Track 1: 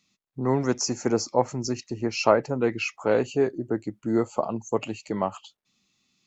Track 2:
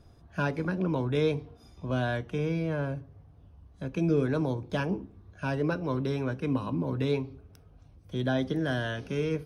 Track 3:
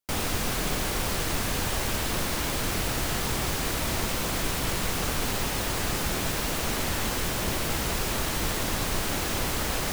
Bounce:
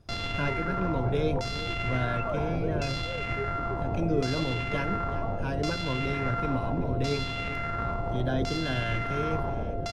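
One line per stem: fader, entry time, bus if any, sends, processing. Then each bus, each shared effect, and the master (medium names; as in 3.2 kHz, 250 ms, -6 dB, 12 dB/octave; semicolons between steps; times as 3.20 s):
-12.5 dB, 0.00 s, bus A, no send, no echo send, formants replaced by sine waves
-3.0 dB, 0.00 s, no bus, no send, echo send -13.5 dB, none
-0.5 dB, 0.00 s, bus A, no send, no echo send, sorted samples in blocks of 64 samples; LFO low-pass saw down 0.71 Hz 430–5500 Hz; de-hum 229.2 Hz, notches 3
bus A: 0.0 dB, peak limiter -22 dBFS, peak gain reduction 8.5 dB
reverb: none
echo: feedback delay 382 ms, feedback 43%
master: peaking EQ 110 Hz +6.5 dB 0.4 oct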